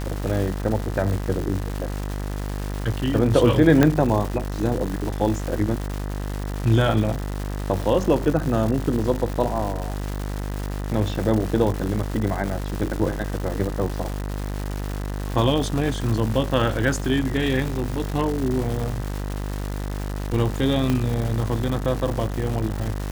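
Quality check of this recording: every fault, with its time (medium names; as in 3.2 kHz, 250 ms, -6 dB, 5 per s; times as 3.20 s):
buzz 50 Hz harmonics 40 -28 dBFS
crackle 410 per s -27 dBFS
3.83 s: pop -4 dBFS
20.90 s: pop -10 dBFS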